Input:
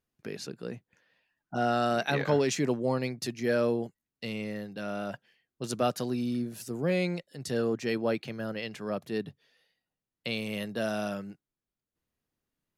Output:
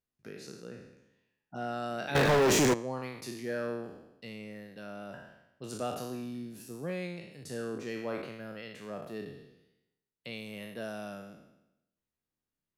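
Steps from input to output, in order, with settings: spectral trails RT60 0.89 s; dynamic EQ 4900 Hz, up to -4 dB, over -50 dBFS, Q 1; 2.15–2.74 sample leveller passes 5; gain -9 dB

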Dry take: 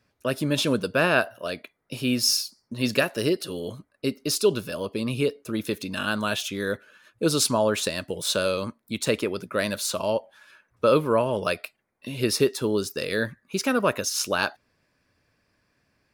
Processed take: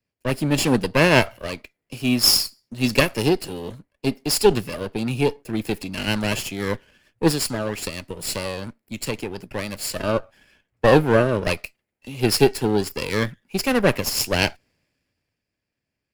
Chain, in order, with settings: minimum comb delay 0.41 ms; 7.31–9.96 compressor 2:1, threshold -30 dBFS, peak gain reduction 7 dB; three-band expander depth 40%; gain +4 dB

